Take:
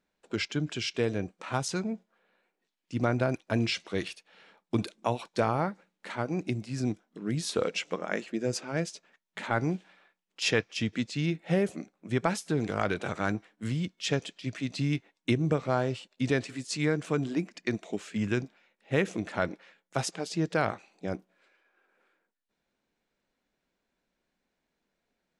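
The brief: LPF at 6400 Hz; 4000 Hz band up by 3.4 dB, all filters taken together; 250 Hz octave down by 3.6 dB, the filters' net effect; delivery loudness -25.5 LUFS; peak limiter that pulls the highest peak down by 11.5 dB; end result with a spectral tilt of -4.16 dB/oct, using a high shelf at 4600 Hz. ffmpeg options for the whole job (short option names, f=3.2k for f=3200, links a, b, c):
-af "lowpass=6.4k,equalizer=f=250:t=o:g=-5,equalizer=f=4k:t=o:g=8,highshelf=f=4.6k:g=-5.5,volume=10dB,alimiter=limit=-12.5dB:level=0:latency=1"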